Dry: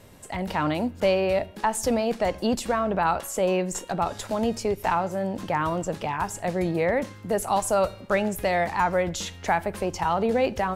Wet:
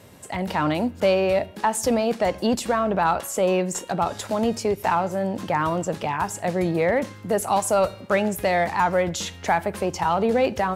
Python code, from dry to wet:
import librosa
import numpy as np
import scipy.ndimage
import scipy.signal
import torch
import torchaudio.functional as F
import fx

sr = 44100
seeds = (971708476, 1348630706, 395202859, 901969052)

p1 = scipy.signal.sosfilt(scipy.signal.butter(2, 74.0, 'highpass', fs=sr, output='sos'), x)
p2 = np.clip(p1, -10.0 ** (-18.5 / 20.0), 10.0 ** (-18.5 / 20.0))
y = p1 + (p2 * 10.0 ** (-8.5 / 20.0))